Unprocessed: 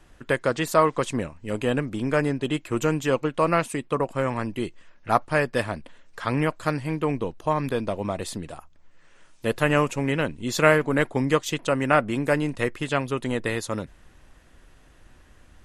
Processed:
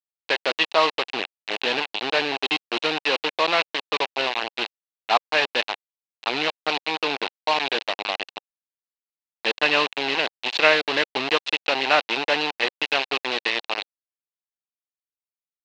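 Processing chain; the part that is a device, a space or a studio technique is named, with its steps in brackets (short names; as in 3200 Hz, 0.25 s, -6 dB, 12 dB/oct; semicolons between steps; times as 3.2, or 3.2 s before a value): hand-held game console (bit-crush 4-bit; speaker cabinet 480–4600 Hz, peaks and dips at 540 Hz -4 dB, 800 Hz +3 dB, 1300 Hz -5 dB, 2700 Hz +9 dB, 4000 Hz +8 dB); gain +1.5 dB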